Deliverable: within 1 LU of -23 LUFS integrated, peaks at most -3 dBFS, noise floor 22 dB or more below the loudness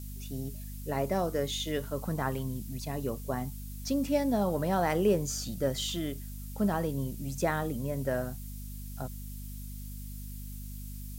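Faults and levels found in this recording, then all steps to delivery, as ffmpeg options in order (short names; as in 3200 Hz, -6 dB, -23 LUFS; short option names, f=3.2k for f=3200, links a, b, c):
hum 50 Hz; harmonics up to 250 Hz; hum level -39 dBFS; noise floor -41 dBFS; noise floor target -55 dBFS; loudness -33.0 LUFS; peak -15.5 dBFS; loudness target -23.0 LUFS
-> -af "bandreject=f=50:t=h:w=4,bandreject=f=100:t=h:w=4,bandreject=f=150:t=h:w=4,bandreject=f=200:t=h:w=4,bandreject=f=250:t=h:w=4"
-af "afftdn=nr=14:nf=-41"
-af "volume=10dB"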